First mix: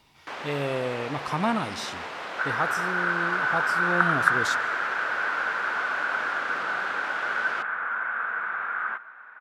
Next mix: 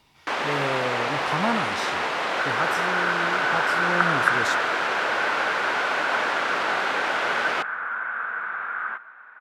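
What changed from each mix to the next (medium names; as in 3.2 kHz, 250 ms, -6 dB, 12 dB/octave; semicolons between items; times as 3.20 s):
first sound +10.0 dB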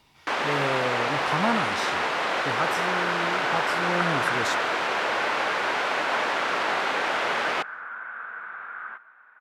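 second sound -7.5 dB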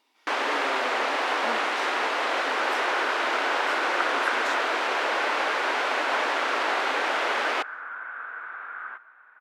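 speech -8.0 dB; master: add brick-wall FIR high-pass 230 Hz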